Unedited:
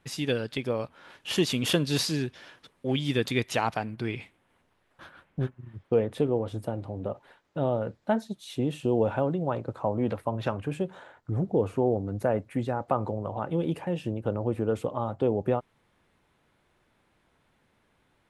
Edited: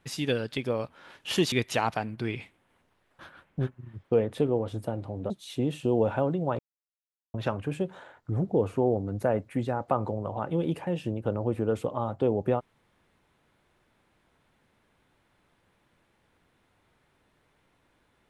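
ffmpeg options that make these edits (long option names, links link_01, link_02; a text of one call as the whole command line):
ffmpeg -i in.wav -filter_complex "[0:a]asplit=5[link_01][link_02][link_03][link_04][link_05];[link_01]atrim=end=1.522[link_06];[link_02]atrim=start=3.318:end=7.102[link_07];[link_03]atrim=start=8.298:end=9.59,asetpts=PTS-STARTPTS,afade=type=out:start_time=1.288:duration=0.004:curve=hsin[link_08];[link_04]atrim=start=9.59:end=10.34,asetpts=PTS-STARTPTS,volume=0[link_09];[link_05]atrim=start=10.34,asetpts=PTS-STARTPTS,afade=type=in:duration=0.004:curve=hsin[link_10];[link_06][link_07]acrossfade=duration=0.004:curve1=hsin:curve2=hsin[link_11];[link_08][link_09][link_10]concat=n=3:v=0:a=1[link_12];[link_11][link_12]acrossfade=duration=0.004:curve1=hsin:curve2=hsin" out.wav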